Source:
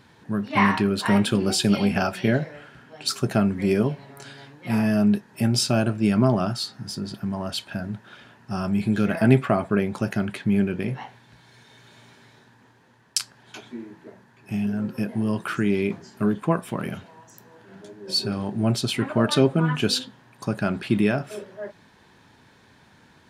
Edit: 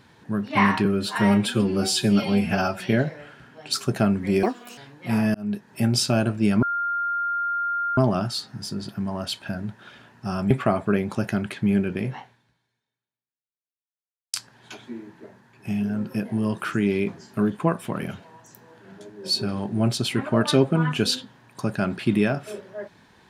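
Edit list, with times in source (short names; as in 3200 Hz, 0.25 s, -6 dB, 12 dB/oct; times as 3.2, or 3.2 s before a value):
0.85–2.15 stretch 1.5×
3.78–4.38 speed 174%
4.95–5.32 fade in
6.23 add tone 1400 Hz -22.5 dBFS 1.35 s
8.76–9.34 cut
10.98–13.17 fade out exponential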